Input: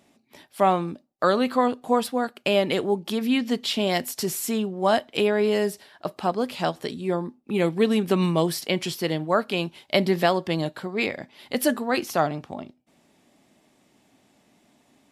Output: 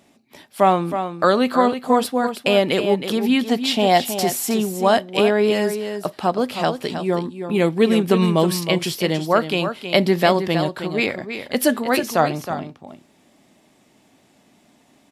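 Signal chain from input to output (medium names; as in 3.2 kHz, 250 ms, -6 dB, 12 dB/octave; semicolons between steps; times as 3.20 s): 3.48–4.54 s: peaking EQ 770 Hz +12 dB 0.38 oct; on a send: delay 318 ms -9 dB; on the sum: trim +4.5 dB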